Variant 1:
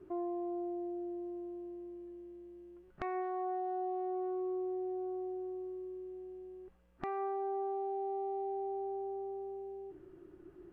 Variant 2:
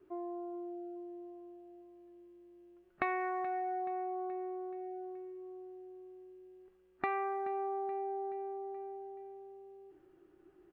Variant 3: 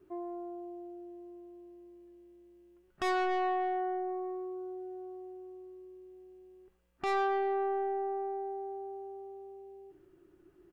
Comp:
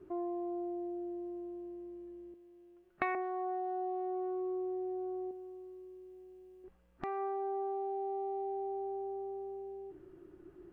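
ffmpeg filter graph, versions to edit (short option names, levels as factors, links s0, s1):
-filter_complex "[0:a]asplit=3[s0][s1][s2];[s0]atrim=end=2.342[s3];[1:a]atrim=start=2.338:end=3.152[s4];[s1]atrim=start=3.148:end=5.312[s5];[2:a]atrim=start=5.308:end=6.642[s6];[s2]atrim=start=6.638[s7];[s3][s4]acrossfade=d=0.004:c1=hsin:c2=hsin[s8];[s8][s5]acrossfade=d=0.004:c1=hsin:c2=hsin[s9];[s9][s6]acrossfade=d=0.004:c1=hsin:c2=hsin[s10];[s10][s7]acrossfade=d=0.004:c1=hsin:c2=hsin"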